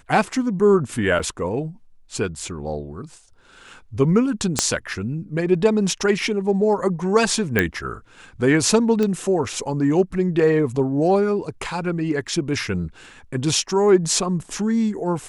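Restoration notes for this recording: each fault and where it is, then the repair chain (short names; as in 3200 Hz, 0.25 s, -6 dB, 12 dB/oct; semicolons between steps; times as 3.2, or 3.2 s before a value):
1.19–1.2 gap 6 ms
4.59 pop -2 dBFS
7.59 pop -5 dBFS
9.03 pop -11 dBFS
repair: de-click; interpolate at 1.19, 6 ms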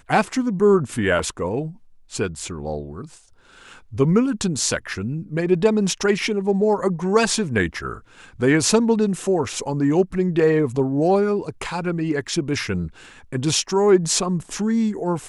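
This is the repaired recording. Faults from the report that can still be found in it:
4.59 pop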